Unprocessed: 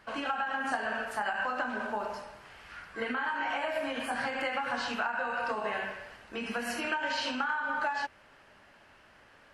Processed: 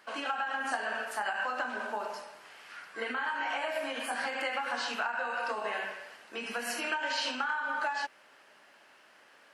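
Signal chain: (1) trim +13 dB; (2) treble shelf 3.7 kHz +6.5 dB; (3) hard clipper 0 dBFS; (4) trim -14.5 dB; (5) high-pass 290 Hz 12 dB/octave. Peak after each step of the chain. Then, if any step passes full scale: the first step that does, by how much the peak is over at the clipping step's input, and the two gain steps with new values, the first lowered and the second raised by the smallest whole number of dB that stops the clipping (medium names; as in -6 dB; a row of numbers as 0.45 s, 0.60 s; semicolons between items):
-4.5 dBFS, -3.5 dBFS, -3.5 dBFS, -18.0 dBFS, -18.0 dBFS; nothing clips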